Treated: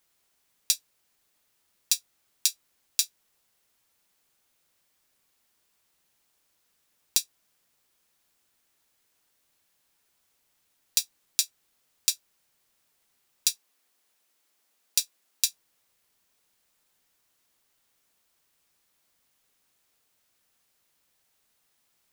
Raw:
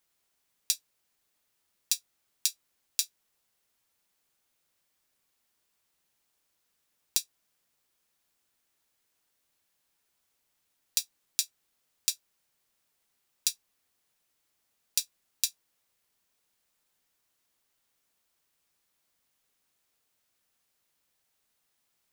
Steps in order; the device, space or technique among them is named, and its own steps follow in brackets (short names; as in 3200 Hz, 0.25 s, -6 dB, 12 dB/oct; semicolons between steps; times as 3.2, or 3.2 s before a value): 13.5–15.45 HPF 240 Hz 12 dB/oct; parallel distortion (in parallel at -5.5 dB: hard clip -18.5 dBFS, distortion -7 dB); on the sum: gain +1 dB